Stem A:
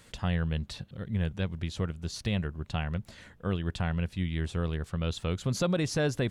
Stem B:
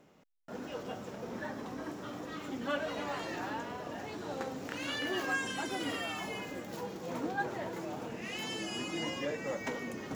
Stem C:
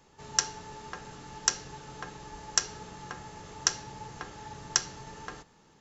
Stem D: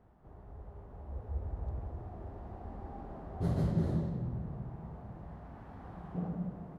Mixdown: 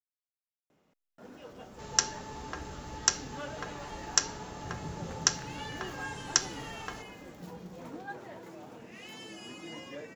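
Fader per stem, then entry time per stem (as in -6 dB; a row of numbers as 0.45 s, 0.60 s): mute, -7.5 dB, +0.5 dB, -11.0 dB; mute, 0.70 s, 1.60 s, 1.25 s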